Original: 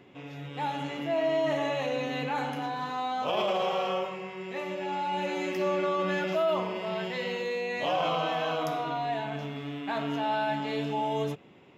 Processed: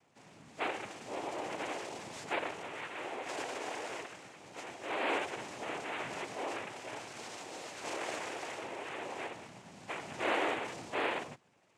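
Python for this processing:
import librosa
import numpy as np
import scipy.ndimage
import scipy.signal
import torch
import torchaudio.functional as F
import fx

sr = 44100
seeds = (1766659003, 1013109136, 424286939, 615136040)

y = fx.small_body(x, sr, hz=(870.0, 1500.0, 3000.0), ring_ms=45, db=9)
y = fx.dynamic_eq(y, sr, hz=2900.0, q=1.1, threshold_db=-44.0, ratio=4.0, max_db=3)
y = scipy.signal.sosfilt(scipy.signal.cheby1(6, 9, 3800.0, 'lowpass', fs=sr, output='sos'), y)
y = fx.noise_vocoder(y, sr, seeds[0], bands=4)
y = y * librosa.db_to_amplitude(-8.5)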